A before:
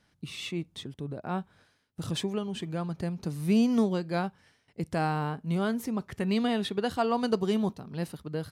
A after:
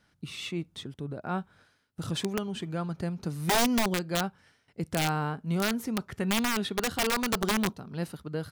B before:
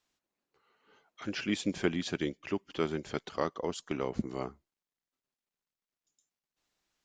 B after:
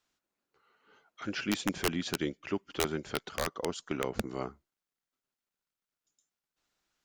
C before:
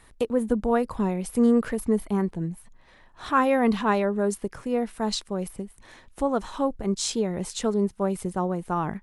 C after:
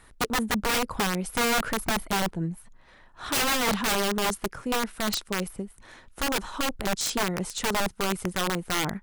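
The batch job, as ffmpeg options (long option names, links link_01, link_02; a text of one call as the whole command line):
ffmpeg -i in.wav -af "equalizer=frequency=1400:width=5.5:gain=5.5,aeval=exprs='(mod(9.44*val(0)+1,2)-1)/9.44':channel_layout=same" out.wav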